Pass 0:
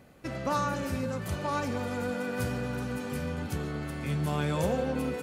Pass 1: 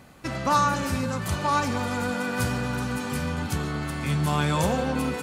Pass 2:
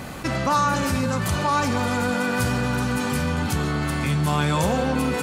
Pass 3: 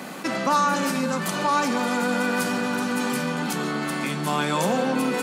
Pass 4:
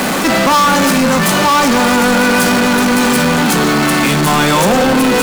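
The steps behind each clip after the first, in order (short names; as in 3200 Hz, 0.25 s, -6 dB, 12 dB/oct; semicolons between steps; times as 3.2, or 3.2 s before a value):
graphic EQ 500/1000/4000/8000 Hz -5/+5/+3/+4 dB; gain +5.5 dB
fast leveller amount 50%
steep high-pass 170 Hz 48 dB/oct
power-law curve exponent 0.35; gain +5 dB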